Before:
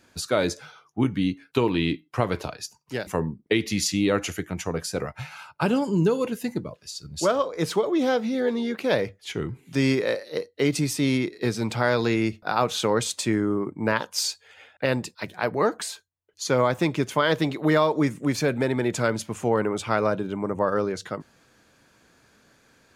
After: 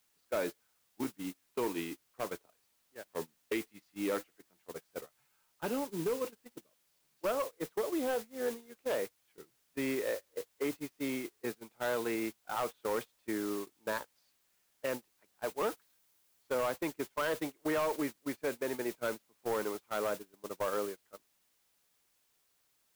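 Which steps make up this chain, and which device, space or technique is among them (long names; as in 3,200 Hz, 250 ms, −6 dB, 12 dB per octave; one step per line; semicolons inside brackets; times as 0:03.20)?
aircraft radio (band-pass filter 310–2,300 Hz; hard clipping −19 dBFS, distortion −14 dB; white noise bed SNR 10 dB; noise gate −27 dBFS, range −27 dB)
0:15.77–0:16.43: high-shelf EQ 10,000 Hz +5 dB
level −8.5 dB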